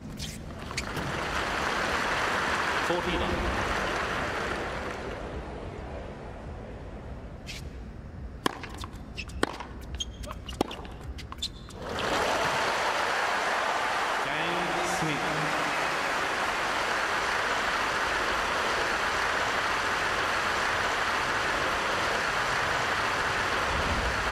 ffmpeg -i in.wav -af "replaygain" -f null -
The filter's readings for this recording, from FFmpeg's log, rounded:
track_gain = +11.6 dB
track_peak = 0.344